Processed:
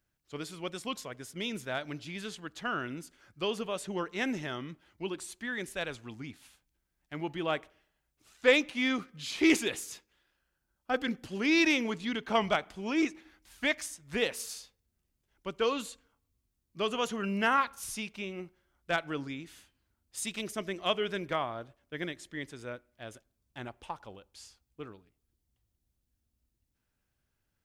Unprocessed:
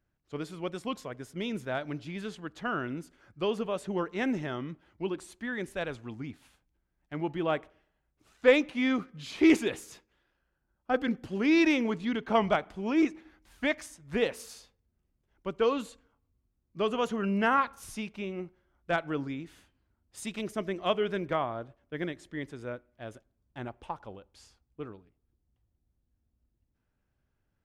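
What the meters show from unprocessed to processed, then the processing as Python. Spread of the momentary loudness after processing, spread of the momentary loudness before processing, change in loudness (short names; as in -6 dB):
18 LU, 17 LU, -1.5 dB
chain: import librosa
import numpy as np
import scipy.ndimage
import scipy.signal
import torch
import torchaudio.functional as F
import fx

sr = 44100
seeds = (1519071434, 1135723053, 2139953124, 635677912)

y = fx.high_shelf(x, sr, hz=2100.0, db=11.5)
y = y * 10.0 ** (-4.0 / 20.0)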